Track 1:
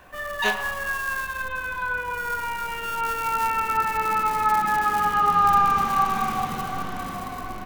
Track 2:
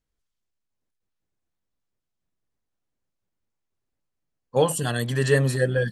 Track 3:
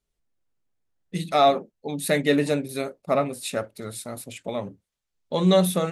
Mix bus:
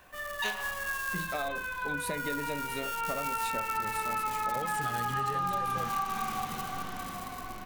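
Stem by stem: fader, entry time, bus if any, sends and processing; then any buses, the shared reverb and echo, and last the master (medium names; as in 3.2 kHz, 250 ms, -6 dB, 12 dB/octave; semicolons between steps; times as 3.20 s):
-8.5 dB, 0.00 s, no bus, no send, treble shelf 2.5 kHz +7.5 dB
-4.5 dB, 0.00 s, bus A, no send, none
-7.0 dB, 0.00 s, bus A, no send, none
bus A: 0.0 dB, compression, threshold -32 dBFS, peak gain reduction 13 dB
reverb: none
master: compression, threshold -28 dBFS, peak gain reduction 7.5 dB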